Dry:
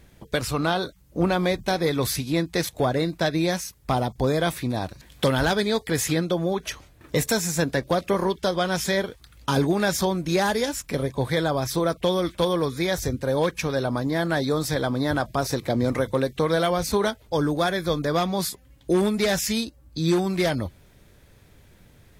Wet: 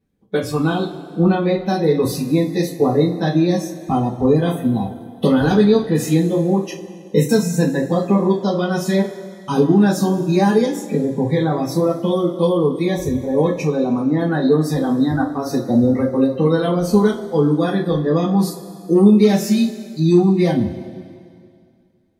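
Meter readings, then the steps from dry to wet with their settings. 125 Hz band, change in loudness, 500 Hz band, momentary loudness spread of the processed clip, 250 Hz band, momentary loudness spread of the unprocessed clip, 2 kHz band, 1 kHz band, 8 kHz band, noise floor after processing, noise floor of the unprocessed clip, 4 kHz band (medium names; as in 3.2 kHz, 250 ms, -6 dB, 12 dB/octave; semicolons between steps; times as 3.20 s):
+7.5 dB, +7.0 dB, +6.5 dB, 8 LU, +10.0 dB, 6 LU, -1.5 dB, +2.5 dB, -2.5 dB, -45 dBFS, -54 dBFS, -2.5 dB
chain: peaking EQ 250 Hz +14 dB 2.5 oct; spectral noise reduction 22 dB; two-slope reverb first 0.24 s, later 2.3 s, from -20 dB, DRR -6 dB; trim -9 dB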